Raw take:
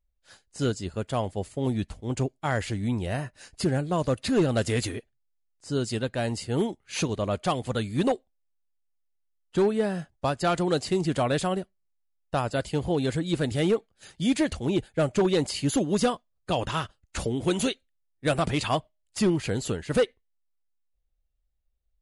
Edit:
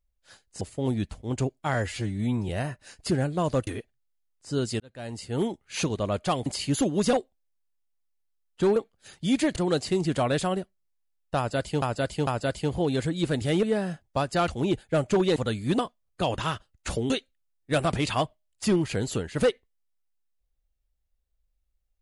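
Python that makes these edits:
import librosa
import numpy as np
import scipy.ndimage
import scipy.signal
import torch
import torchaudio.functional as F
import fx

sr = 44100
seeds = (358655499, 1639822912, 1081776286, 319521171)

y = fx.edit(x, sr, fx.cut(start_s=0.61, length_s=0.79),
    fx.stretch_span(start_s=2.53, length_s=0.5, factor=1.5),
    fx.cut(start_s=4.21, length_s=0.65),
    fx.fade_in_span(start_s=5.99, length_s=0.7),
    fx.swap(start_s=7.65, length_s=0.43, other_s=15.41, other_length_s=0.67),
    fx.swap(start_s=9.71, length_s=0.85, other_s=13.73, other_length_s=0.8),
    fx.repeat(start_s=12.37, length_s=0.45, count=3),
    fx.cut(start_s=17.39, length_s=0.25), tone=tone)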